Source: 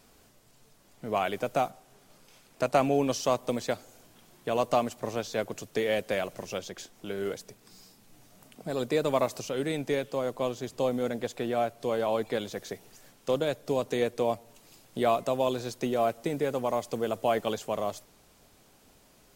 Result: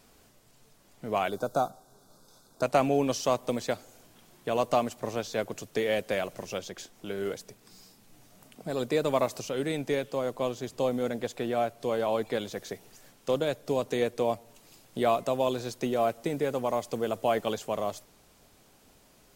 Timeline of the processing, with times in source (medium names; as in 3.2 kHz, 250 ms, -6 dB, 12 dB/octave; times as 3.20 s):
1.30–2.63 s: time-frequency box 1.6–3.4 kHz -19 dB